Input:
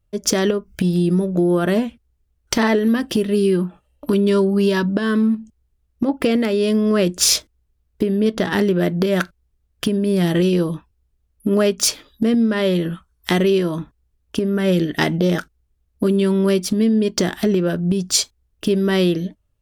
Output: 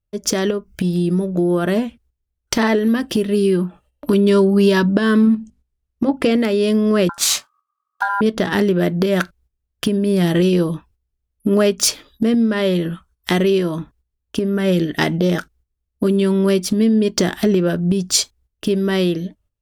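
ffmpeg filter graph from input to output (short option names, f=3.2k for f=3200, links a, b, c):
-filter_complex "[0:a]asettb=1/sr,asplit=3[a][b][c];[a]atrim=end=5.254[d];[b]atrim=start=5.25:end=6.38,asetpts=PTS-STARTPTS,afade=t=in:d=0.004:c=qsin,afade=t=out:st=1.126:d=0.004:c=qsin,lowpass=11k,bandreject=f=50:t=h:w=6,bandreject=f=100:t=h:w=6,bandreject=f=150:t=h:w=6,bandreject=f=200:t=h:w=6,bandreject=f=250:t=h:w=6[e];[c]atrim=start=6.376[f];[d][e]acrossfade=d=0.004:c1=hsin:c2=qsin[g];[g][f]acrossfade=d=0.004:c1=qsin:c2=hsin,asettb=1/sr,asplit=3[h][i][j];[h]atrim=end=7.094[k];[i]atrim=start=7.09:end=8.21,asetpts=PTS-STARTPTS,afade=t=in:d=0.004:c=qsin,afade=t=out:st=1.116:d=0.004:c=qsin,aeval=exprs='val(0)*sin(2*PI*1200*n/s)':c=same,asplit=2[l][m];[m]adelay=24,volume=-12dB[n];[l][n]amix=inputs=2:normalize=0,atrim=end_sample=49392[o];[j]atrim=start=8.206[p];[k][o]acrossfade=d=0.004:c1=hsin:c2=qsin[q];[q][p]acrossfade=d=0.004:c1=qsin:c2=hsin,agate=range=-11dB:threshold=-50dB:ratio=16:detection=peak,dynaudnorm=f=190:g=17:m=11.5dB,volume=-1dB"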